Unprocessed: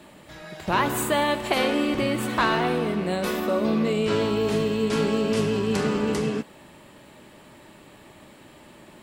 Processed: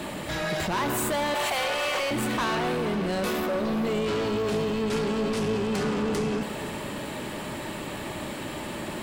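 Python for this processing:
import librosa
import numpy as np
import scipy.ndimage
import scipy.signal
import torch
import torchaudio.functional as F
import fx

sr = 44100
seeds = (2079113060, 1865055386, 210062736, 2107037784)

p1 = fx.cheby2_highpass(x, sr, hz=220.0, order=4, stop_db=50, at=(1.34, 2.11))
p2 = fx.over_compress(p1, sr, threshold_db=-36.0, ratio=-1.0)
p3 = p1 + F.gain(torch.from_numpy(p2), 3.0).numpy()
p4 = 10.0 ** (-23.5 / 20.0) * np.tanh(p3 / 10.0 ** (-23.5 / 20.0))
y = p4 + fx.echo_diffused(p4, sr, ms=511, feedback_pct=44, wet_db=-15, dry=0)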